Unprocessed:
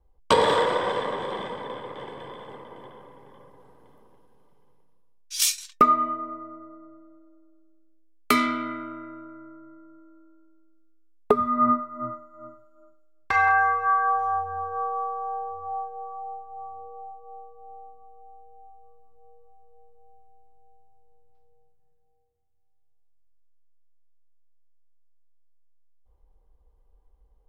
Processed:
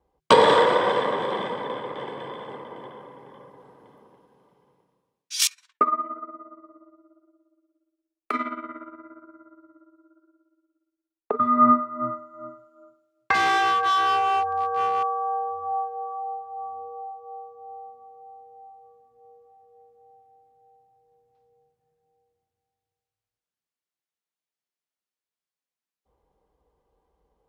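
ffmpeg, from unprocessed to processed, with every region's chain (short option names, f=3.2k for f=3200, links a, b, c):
-filter_complex "[0:a]asettb=1/sr,asplit=3[a][b][c];[a]atrim=end=5.474[d];[b]atrim=start=5.47:end=11.4,asetpts=PTS-STARTPTS,afade=t=in:d=0.004:c=qsin,afade=t=out:st=5.926:d=0.004:c=qsin,flanger=delay=4.8:depth=5.7:regen=-70:speed=1:shape=sinusoidal,acrossover=split=270 2000:gain=0.178 1 0.158[e][f][g];[e][f][g]amix=inputs=3:normalize=0,tremolo=f=17:d=0.75[h];[c]atrim=start=11.396[i];[d][h]acrossfade=d=0.004:c1=hsin:c2=qsin[j];[j][i]acrossfade=d=0.004:c1=qsin:c2=hsin,asettb=1/sr,asplit=3[k][l][m];[k]atrim=end=13.344[n];[l]atrim=start=13.34:end=15.03,asetpts=PTS-STARTPTS,afade=t=in:d=0.004:c=qsin,afade=t=out:st=1.686:d=0.004:c=qsin,asplit=2[o][p];[p]adelay=40,volume=-13dB[q];[o][q]amix=inputs=2:normalize=0,atrim=end_sample=74529,asoftclip=type=hard:threshold=-23.5dB[r];[m]atrim=start=15.026[s];[n][r]acrossfade=d=0.004:c1=hsin:c2=qsin[t];[t][s]acrossfade=d=0.004:c1=qsin:c2=hsin,highpass=130,highshelf=f=9.3k:g=-11.5,volume=4.5dB"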